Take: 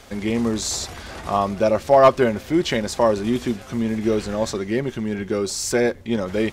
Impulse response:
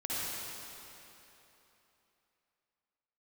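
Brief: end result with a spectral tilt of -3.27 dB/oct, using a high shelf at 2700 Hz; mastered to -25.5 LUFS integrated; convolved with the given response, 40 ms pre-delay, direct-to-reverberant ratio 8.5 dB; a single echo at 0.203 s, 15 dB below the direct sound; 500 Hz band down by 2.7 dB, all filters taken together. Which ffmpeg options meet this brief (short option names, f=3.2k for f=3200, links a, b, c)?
-filter_complex "[0:a]equalizer=f=500:t=o:g=-4,highshelf=f=2.7k:g=8.5,aecho=1:1:203:0.178,asplit=2[a][b];[1:a]atrim=start_sample=2205,adelay=40[c];[b][c]afir=irnorm=-1:irlink=0,volume=-14.5dB[d];[a][d]amix=inputs=2:normalize=0,volume=-5dB"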